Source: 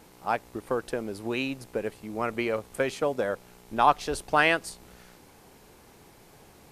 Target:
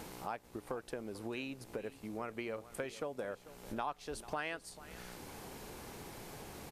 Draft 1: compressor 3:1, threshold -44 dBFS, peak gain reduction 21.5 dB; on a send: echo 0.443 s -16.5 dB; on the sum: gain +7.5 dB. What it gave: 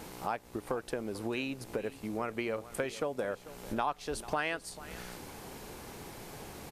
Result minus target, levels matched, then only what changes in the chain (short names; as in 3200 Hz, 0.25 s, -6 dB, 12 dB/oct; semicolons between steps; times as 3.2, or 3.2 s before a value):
compressor: peak gain reduction -6.5 dB
change: compressor 3:1, threshold -53.5 dBFS, peak gain reduction 28 dB